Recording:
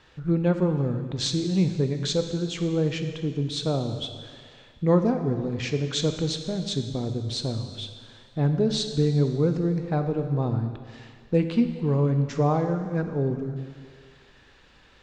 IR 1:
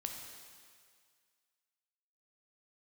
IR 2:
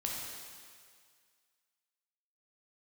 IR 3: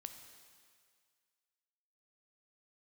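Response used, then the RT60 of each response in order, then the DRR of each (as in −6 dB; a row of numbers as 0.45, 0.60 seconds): 3; 2.0, 2.0, 2.0 seconds; 2.5, −2.5, 6.5 decibels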